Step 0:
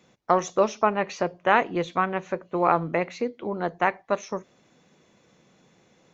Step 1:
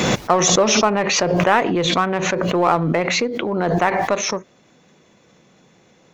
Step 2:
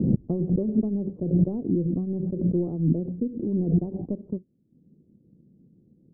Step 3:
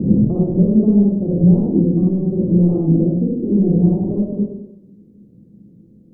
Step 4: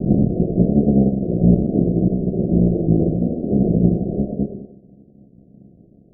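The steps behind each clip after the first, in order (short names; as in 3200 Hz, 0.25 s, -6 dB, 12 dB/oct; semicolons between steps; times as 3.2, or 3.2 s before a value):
in parallel at -5 dB: hard clip -23 dBFS, distortion -5 dB; on the sum: backwards sustainer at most 21 dB/s; gain +2 dB
transient shaper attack +5 dB, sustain -9 dB; inverse Chebyshev low-pass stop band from 1800 Hz, stop band 80 dB
in parallel at -2.5 dB: limiter -20.5 dBFS, peak gain reduction 10.5 dB; on the sum: reverb RT60 0.85 s, pre-delay 42 ms, DRR -5 dB
cycle switcher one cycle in 3, muted; Chebyshev low-pass 720 Hz, order 8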